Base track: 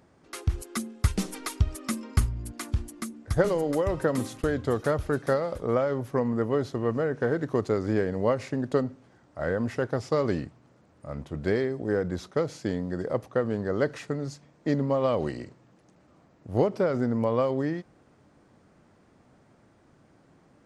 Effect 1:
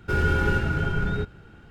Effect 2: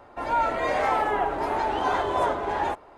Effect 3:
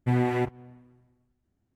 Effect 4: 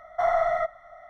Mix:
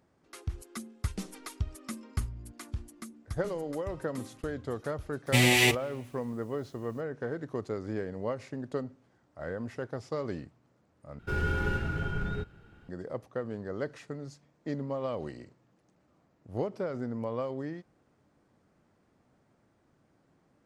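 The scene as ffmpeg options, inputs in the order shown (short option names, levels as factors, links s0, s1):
-filter_complex "[0:a]volume=0.355[s0];[3:a]aexciter=amount=15.2:drive=5.4:freq=2200[s1];[s0]asplit=2[s2][s3];[s2]atrim=end=11.194[s4];[1:a]atrim=end=1.7,asetpts=PTS-STARTPTS,volume=0.422[s5];[s3]atrim=start=12.886[s6];[s1]atrim=end=1.75,asetpts=PTS-STARTPTS,volume=0.891,afade=t=in:d=0.004:c=hsin,afade=t=out:st=1.746:d=0.004:c=hsin,adelay=5260[s7];[s4][s5]acrossfade=d=0.004:c1=hsin:c2=hsin[s8];[s8][s6]acrossfade=d=0.004:c1=hsin:c2=hsin[s9];[s9][s7]amix=inputs=2:normalize=0"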